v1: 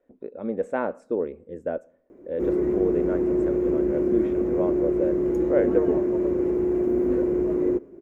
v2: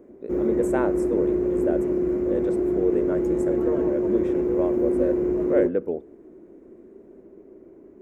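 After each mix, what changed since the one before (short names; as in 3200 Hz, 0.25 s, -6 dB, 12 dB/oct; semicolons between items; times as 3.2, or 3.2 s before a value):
speech: remove LPF 3400 Hz 12 dB/oct; background: entry -2.10 s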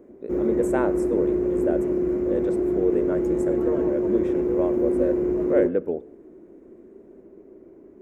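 speech: send +8.5 dB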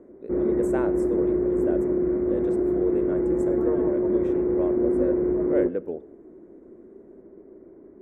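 speech -5.0 dB; background: add steep low-pass 2100 Hz 36 dB/oct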